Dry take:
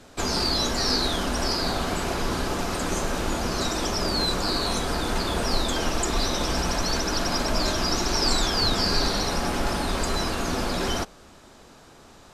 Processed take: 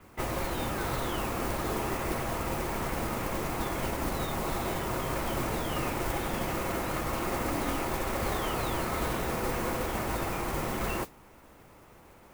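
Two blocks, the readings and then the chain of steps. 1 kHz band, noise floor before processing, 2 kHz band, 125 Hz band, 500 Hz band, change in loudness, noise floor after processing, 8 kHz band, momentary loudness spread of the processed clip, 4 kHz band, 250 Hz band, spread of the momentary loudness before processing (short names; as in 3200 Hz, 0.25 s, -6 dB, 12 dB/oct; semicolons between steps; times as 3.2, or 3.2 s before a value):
-4.0 dB, -50 dBFS, -5.5 dB, -4.0 dB, -4.5 dB, -7.0 dB, -55 dBFS, -10.0 dB, 2 LU, -16.0 dB, -5.5 dB, 5 LU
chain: mistuned SSB -340 Hz 310–2900 Hz; modulation noise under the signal 11 dB; gain -2 dB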